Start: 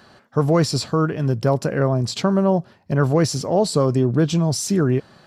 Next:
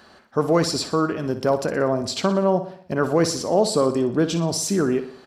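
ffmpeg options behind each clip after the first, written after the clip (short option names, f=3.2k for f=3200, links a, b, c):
-filter_complex "[0:a]equalizer=f=130:t=o:w=0.64:g=-13.5,asplit=2[a][b];[b]aecho=0:1:60|120|180|240|300:0.266|0.136|0.0692|0.0353|0.018[c];[a][c]amix=inputs=2:normalize=0"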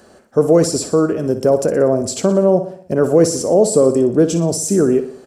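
-filter_complex "[0:a]equalizer=f=500:t=o:w=1:g=6,equalizer=f=1k:t=o:w=1:g=-7,equalizer=f=2k:t=o:w=1:g=-5,equalizer=f=4k:t=o:w=1:g=-11,equalizer=f=8k:t=o:w=1:g=9,acrossover=split=560[a][b];[b]alimiter=limit=-18dB:level=0:latency=1:release=26[c];[a][c]amix=inputs=2:normalize=0,volume=5dB"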